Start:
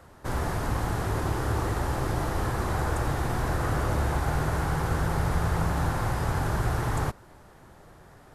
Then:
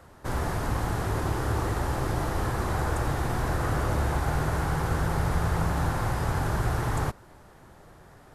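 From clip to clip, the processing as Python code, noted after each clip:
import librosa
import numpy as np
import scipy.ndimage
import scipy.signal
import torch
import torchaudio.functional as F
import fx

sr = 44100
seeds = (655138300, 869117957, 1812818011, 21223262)

y = x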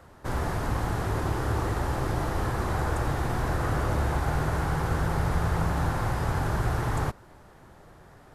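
y = fx.peak_eq(x, sr, hz=11000.0, db=-3.0, octaves=1.7)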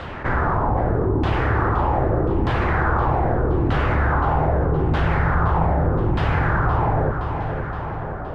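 y = fx.filter_lfo_lowpass(x, sr, shape='saw_down', hz=0.81, low_hz=290.0, high_hz=3400.0, q=2.6)
y = fx.echo_feedback(y, sr, ms=519, feedback_pct=47, wet_db=-12)
y = fx.env_flatten(y, sr, amount_pct=50)
y = F.gain(torch.from_numpy(y), 4.0).numpy()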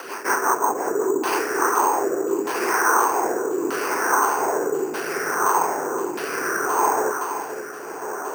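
y = fx.rotary_switch(x, sr, hz=5.5, then_hz=0.75, switch_at_s=0.87)
y = fx.cabinet(y, sr, low_hz=310.0, low_slope=24, high_hz=3800.0, hz=(410.0, 580.0, 1000.0, 1500.0, 2600.0), db=(8, -5, 9, 6, 8))
y = np.repeat(y[::6], 6)[:len(y)]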